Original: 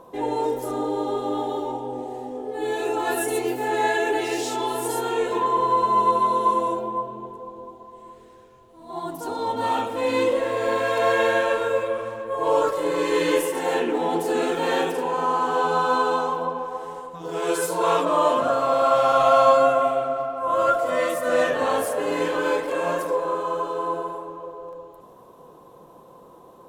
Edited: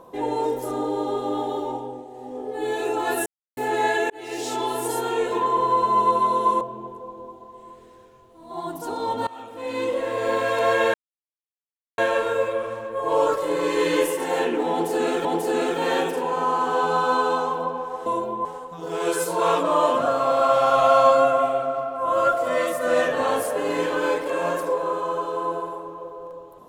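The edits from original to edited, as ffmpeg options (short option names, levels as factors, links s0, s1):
-filter_complex "[0:a]asplit=12[s0][s1][s2][s3][s4][s5][s6][s7][s8][s9][s10][s11];[s0]atrim=end=2.04,asetpts=PTS-STARTPTS,afade=t=out:st=1.77:d=0.27:silence=0.398107[s12];[s1]atrim=start=2.04:end=2.13,asetpts=PTS-STARTPTS,volume=0.398[s13];[s2]atrim=start=2.13:end=3.26,asetpts=PTS-STARTPTS,afade=t=in:d=0.27:silence=0.398107,afade=t=out:st=1.126:d=0.004:c=hsin[s14];[s3]atrim=start=3.26:end=3.57,asetpts=PTS-STARTPTS,volume=0[s15];[s4]atrim=start=3.57:end=4.1,asetpts=PTS-STARTPTS,afade=t=in:d=0.004:c=hsin,afade=t=out:st=0.526:d=0.004:c=hsin[s16];[s5]atrim=start=4.1:end=6.612,asetpts=PTS-STARTPTS,afade=t=in:d=0.43[s17];[s6]atrim=start=6.998:end=9.66,asetpts=PTS-STARTPTS,afade=t=out:st=2.658:d=0.004:c=hsin:silence=0.0841395[s18];[s7]atrim=start=9.66:end=11.33,asetpts=PTS-STARTPTS,afade=t=in:d=1.02:silence=0.0841395,afade=t=out:st=1.666:d=0.004:c=hsin,apad=pad_dur=1.04[s19];[s8]atrim=start=11.33:end=14.602,asetpts=PTS-STARTPTS,afade=t=in:d=0.004:c=hsin[s20];[s9]atrim=start=14.058:end=16.872[s21];[s10]atrim=start=6.608:end=7.002[s22];[s11]atrim=start=16.868[s23];[s12][s13][s14][s15][s16][s17]concat=n=6:v=0:a=1[s24];[s18][s19][s20]concat=n=3:v=0:a=1[s25];[s24][s25]acrossfade=d=0.004:c1=hsin:c2=hsin[s26];[s26][s21]acrossfade=d=0.004:c1=hsin:c2=hsin[s27];[s27][s22]acrossfade=d=0.004:c1=hsin:c2=hsin[s28];[s28][s23]acrossfade=d=0.004:c1=hsin:c2=hsin"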